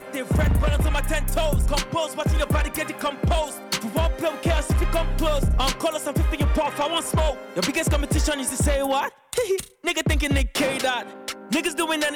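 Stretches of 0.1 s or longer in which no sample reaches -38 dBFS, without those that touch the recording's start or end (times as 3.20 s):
9.09–9.33 s
9.68–9.84 s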